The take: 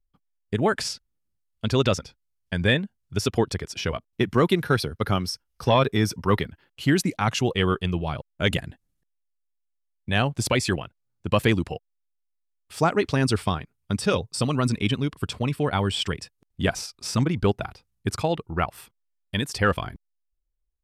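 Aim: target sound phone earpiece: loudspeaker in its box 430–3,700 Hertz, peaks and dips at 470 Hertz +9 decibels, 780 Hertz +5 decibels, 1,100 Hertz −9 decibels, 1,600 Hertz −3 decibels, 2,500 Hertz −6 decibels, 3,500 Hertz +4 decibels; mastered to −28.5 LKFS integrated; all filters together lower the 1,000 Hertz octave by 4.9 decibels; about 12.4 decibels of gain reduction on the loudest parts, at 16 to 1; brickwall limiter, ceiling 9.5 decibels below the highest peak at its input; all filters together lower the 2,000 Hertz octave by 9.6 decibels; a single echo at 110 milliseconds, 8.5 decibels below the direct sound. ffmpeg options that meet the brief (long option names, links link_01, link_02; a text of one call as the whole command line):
ffmpeg -i in.wav -af "equalizer=frequency=1000:width_type=o:gain=-5,equalizer=frequency=2000:width_type=o:gain=-6,acompressor=threshold=-29dB:ratio=16,alimiter=level_in=2dB:limit=-24dB:level=0:latency=1,volume=-2dB,highpass=430,equalizer=frequency=470:width_type=q:width=4:gain=9,equalizer=frequency=780:width_type=q:width=4:gain=5,equalizer=frequency=1100:width_type=q:width=4:gain=-9,equalizer=frequency=1600:width_type=q:width=4:gain=-3,equalizer=frequency=2500:width_type=q:width=4:gain=-6,equalizer=frequency=3500:width_type=q:width=4:gain=4,lowpass=frequency=3700:width=0.5412,lowpass=frequency=3700:width=1.3066,aecho=1:1:110:0.376,volume=12dB" out.wav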